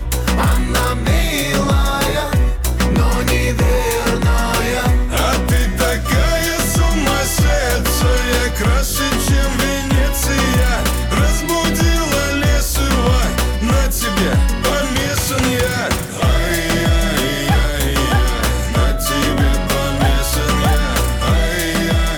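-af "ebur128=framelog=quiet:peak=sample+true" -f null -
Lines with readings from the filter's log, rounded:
Integrated loudness:
  I:         -16.1 LUFS
  Threshold: -26.1 LUFS
Loudness range:
  LRA:         0.7 LU
  Threshold: -36.1 LUFS
  LRA low:   -16.4 LUFS
  LRA high:  -15.7 LUFS
Sample peak:
  Peak:       -7.2 dBFS
True peak:
  Peak:       -7.1 dBFS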